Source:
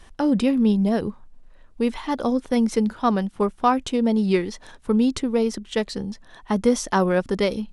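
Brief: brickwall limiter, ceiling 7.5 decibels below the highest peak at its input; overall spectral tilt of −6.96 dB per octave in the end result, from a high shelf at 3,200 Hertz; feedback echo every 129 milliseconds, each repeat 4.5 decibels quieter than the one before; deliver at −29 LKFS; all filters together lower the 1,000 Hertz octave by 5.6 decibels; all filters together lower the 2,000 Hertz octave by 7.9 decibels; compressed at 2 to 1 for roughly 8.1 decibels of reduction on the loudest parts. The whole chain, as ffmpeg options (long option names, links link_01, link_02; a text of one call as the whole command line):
ffmpeg -i in.wav -af "equalizer=frequency=1000:width_type=o:gain=-5.5,equalizer=frequency=2000:width_type=o:gain=-5.5,highshelf=frequency=3200:gain=-8.5,acompressor=threshold=-30dB:ratio=2,alimiter=limit=-23dB:level=0:latency=1,aecho=1:1:129|258|387|516|645|774|903|1032|1161:0.596|0.357|0.214|0.129|0.0772|0.0463|0.0278|0.0167|0.01,volume=2dB" out.wav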